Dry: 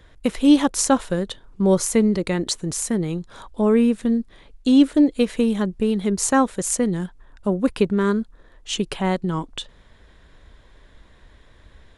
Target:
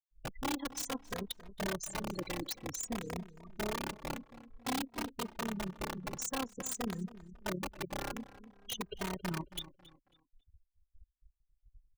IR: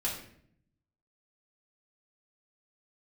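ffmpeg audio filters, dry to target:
-filter_complex "[0:a]lowpass=7.6k,afftfilt=real='re*gte(hypot(re,im),0.0794)':imag='im*gte(hypot(re,im),0.0794)':win_size=1024:overlap=0.75,highshelf=f=3.4k:t=q:w=1.5:g=6.5,acompressor=threshold=-28dB:ratio=10,tremolo=f=34:d=0.788,aeval=exprs='(mod(21.1*val(0)+1,2)-1)/21.1':c=same,asplit=2[a][b];[b]adelay=273,lowpass=f=3k:p=1,volume=-16dB,asplit=2[c][d];[d]adelay=273,lowpass=f=3k:p=1,volume=0.36,asplit=2[e][f];[f]adelay=273,lowpass=f=3k:p=1,volume=0.36[g];[c][e][g]amix=inputs=3:normalize=0[h];[a][h]amix=inputs=2:normalize=0,asplit=2[i][j];[j]adelay=2.9,afreqshift=-0.53[k];[i][k]amix=inputs=2:normalize=1"

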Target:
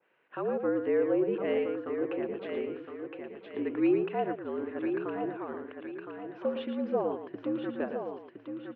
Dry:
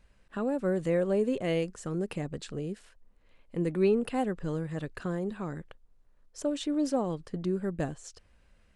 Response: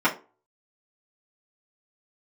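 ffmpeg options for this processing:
-filter_complex "[0:a]asplit=2[a][b];[b]aecho=0:1:113:0.422[c];[a][c]amix=inputs=2:normalize=0,highpass=f=350:t=q:w=0.5412,highpass=f=350:t=q:w=1.307,lowpass=f=3k:t=q:w=0.5176,lowpass=f=3k:t=q:w=0.7071,lowpass=f=3k:t=q:w=1.932,afreqshift=-58,asplit=2[d][e];[e]aecho=0:1:1014|2028|3042|4056:0.447|0.143|0.0457|0.0146[f];[d][f]amix=inputs=2:normalize=0,adynamicequalizer=threshold=0.00447:dfrequency=1600:dqfactor=0.7:tfrequency=1600:tqfactor=0.7:attack=5:release=100:ratio=0.375:range=3:mode=cutabove:tftype=highshelf,volume=1.5dB"

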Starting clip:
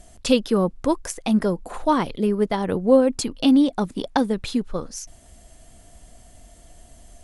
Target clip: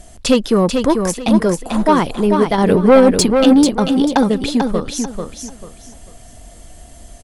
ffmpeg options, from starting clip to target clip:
-filter_complex "[0:a]asettb=1/sr,asplit=3[a][b][c];[a]atrim=end=2.584[d];[b]atrim=start=2.58:end=3.27,asetpts=PTS-STARTPTS,afade=t=in:d=0.004:c=qsin,afade=t=out:st=0.686:d=0.004:c=qsin,acontrast=22[e];[c]atrim=start=3.266[f];[d][e]acrossfade=d=0.004:c1=hsin:c2=qsin[g];[g][f]acrossfade=d=0.004:c1=qsin:c2=hsin,asoftclip=type=tanh:threshold=-11.5dB,asplit=2[h][i];[i]aecho=0:1:441|882|1323|1764:0.531|0.143|0.0387|0.0104[j];[h][j]amix=inputs=2:normalize=0,volume=7.5dB"

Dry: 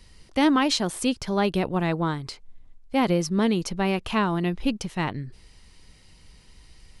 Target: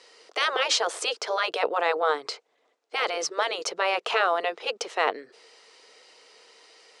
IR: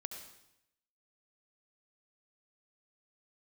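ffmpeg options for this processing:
-af "afftfilt=real='re*lt(hypot(re,im),0.251)':imag='im*lt(hypot(re,im),0.251)':win_size=1024:overlap=0.75,highpass=f=410:w=0.5412,highpass=f=410:w=1.3066,equalizer=f=460:t=q:w=4:g=10,equalizer=f=680:t=q:w=4:g=5,equalizer=f=1.3k:t=q:w=4:g=5,lowpass=f=7.8k:w=0.5412,lowpass=f=7.8k:w=1.3066,volume=4dB"

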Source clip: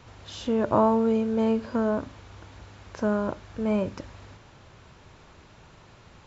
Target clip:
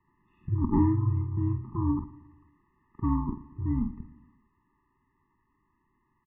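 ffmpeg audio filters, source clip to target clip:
-filter_complex "[0:a]lowshelf=f=480:g=-3.5,afwtdn=0.0158,asplit=2[a][b];[b]adelay=48,volume=-9dB[c];[a][c]amix=inputs=2:normalize=0,aecho=1:1:116|232|348|464|580:0.119|0.0642|0.0347|0.0187|0.0101,highpass=f=280:t=q:w=0.5412,highpass=f=280:t=q:w=1.307,lowpass=f=2.3k:t=q:w=0.5176,lowpass=f=2.3k:t=q:w=0.7071,lowpass=f=2.3k:t=q:w=1.932,afreqshift=-350,afftfilt=real='re*eq(mod(floor(b*sr/1024/420),2),0)':imag='im*eq(mod(floor(b*sr/1024/420),2),0)':win_size=1024:overlap=0.75,volume=2.5dB"

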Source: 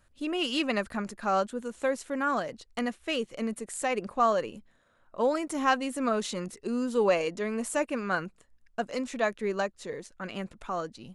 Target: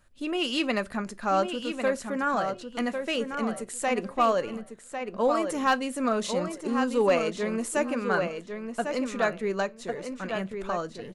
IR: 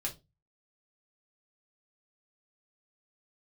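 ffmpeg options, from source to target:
-filter_complex "[0:a]asplit=2[a][b];[b]adelay=1100,lowpass=f=4k:p=1,volume=-6.5dB,asplit=2[c][d];[d]adelay=1100,lowpass=f=4k:p=1,volume=0.18,asplit=2[e][f];[f]adelay=1100,lowpass=f=4k:p=1,volume=0.18[g];[c][e][g]amix=inputs=3:normalize=0[h];[a][h]amix=inputs=2:normalize=0,volume=16dB,asoftclip=hard,volume=-16dB,asplit=2[i][j];[1:a]atrim=start_sample=2205[k];[j][k]afir=irnorm=-1:irlink=0,volume=-13dB[l];[i][l]amix=inputs=2:normalize=0"

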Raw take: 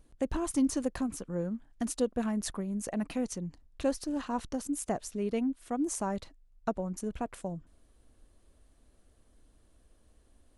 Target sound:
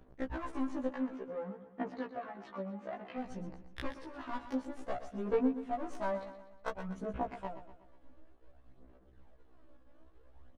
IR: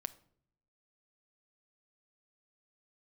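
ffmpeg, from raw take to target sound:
-filter_complex "[0:a]aeval=exprs='if(lt(val(0),0),0.251*val(0),val(0))':c=same,lowshelf=f=300:g=-11.5,acompressor=threshold=-46dB:ratio=2,aeval=exprs='0.0531*(cos(1*acos(clip(val(0)/0.0531,-1,1)))-cos(1*PI/2))+0.00531*(cos(8*acos(clip(val(0)/0.0531,-1,1)))-cos(8*PI/2))':c=same,adynamicsmooth=sensitivity=5:basefreq=1.6k,aphaser=in_gain=1:out_gain=1:delay=3.6:decay=0.58:speed=0.56:type=sinusoidal,asettb=1/sr,asplit=3[a][b][c];[a]atrim=end=0.884[d];[b]atrim=start=0.88:end=3.18,asetpts=PTS-STARTPTS,afade=t=in:d=0.004:c=qsin,afade=t=out:st=2.296:d=0.004:c=qsin,highpass=170,lowpass=3.3k[e];[c]atrim=start=3.176[f];[d][e]acrossfade=d=0.004:c1=hsin:c2=qsin[g];[g][f]acrossfade=d=0.004:c1=qsin:c2=hsin,aecho=1:1:122|244|366|488|610:0.251|0.123|0.0603|0.0296|0.0145,afftfilt=real='re*1.73*eq(mod(b,3),0)':imag='im*1.73*eq(mod(b,3),0)':win_size=2048:overlap=0.75,volume=12dB"

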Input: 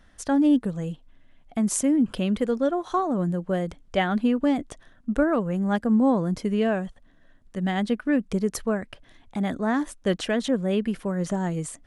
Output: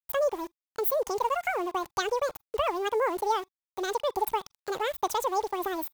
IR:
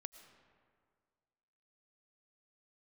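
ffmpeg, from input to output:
-filter_complex "[0:a]asetrate=88200,aresample=44100,highshelf=f=8.4k:g=11,asplit=2[a][b];[b]acompressor=threshold=-30dB:ratio=6,volume=-0.5dB[c];[a][c]amix=inputs=2:normalize=0,aeval=exprs='val(0)*gte(abs(val(0)),0.0237)':c=same,equalizer=f=860:t=o:w=0.57:g=8[d];[1:a]atrim=start_sample=2205,atrim=end_sample=3969,asetrate=83790,aresample=44100[e];[d][e]afir=irnorm=-1:irlink=0,volume=1.5dB"

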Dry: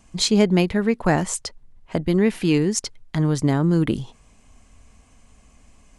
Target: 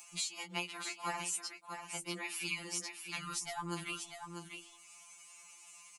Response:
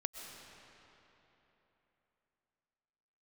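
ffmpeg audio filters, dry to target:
-filter_complex "[0:a]aderivative,bandreject=f=67.67:t=h:w=4,bandreject=f=135.34:t=h:w=4,bandreject=f=203.01:t=h:w=4,bandreject=f=270.68:t=h:w=4,bandreject=f=338.35:t=h:w=4,bandreject=f=406.02:t=h:w=4,acompressor=threshold=-39dB:ratio=4,superequalizer=7b=0.562:9b=3.16:10b=2.51:12b=2.51,tremolo=f=130:d=0.947,asplit=2[a][b];[b]aecho=0:1:643:0.447[c];[a][c]amix=inputs=2:normalize=0,acompressor=mode=upward:threshold=-52dB:ratio=2.5,afftfilt=real='re*2.83*eq(mod(b,8),0)':imag='im*2.83*eq(mod(b,8),0)':win_size=2048:overlap=0.75,volume=7dB"

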